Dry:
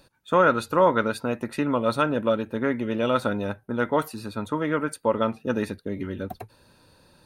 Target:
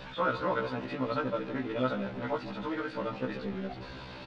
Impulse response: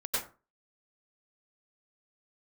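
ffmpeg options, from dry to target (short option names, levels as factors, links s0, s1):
-filter_complex "[0:a]aeval=exprs='val(0)+0.5*0.0447*sgn(val(0))':c=same,lowpass=f=4000:w=0.5412,lowpass=f=4000:w=1.3066,asplit=2[s0][s1];[s1]adelay=265,lowpass=f=2900:p=1,volume=0.251,asplit=2[s2][s3];[s3]adelay=265,lowpass=f=2900:p=1,volume=0.42,asplit=2[s4][s5];[s5]adelay=265,lowpass=f=2900:p=1,volume=0.42,asplit=2[s6][s7];[s7]adelay=265,lowpass=f=2900:p=1,volume=0.42[s8];[s0][s2][s4][s6][s8]amix=inputs=5:normalize=0,atempo=1.7,afftfilt=real='re*1.73*eq(mod(b,3),0)':imag='im*1.73*eq(mod(b,3),0)':win_size=2048:overlap=0.75,volume=0.447"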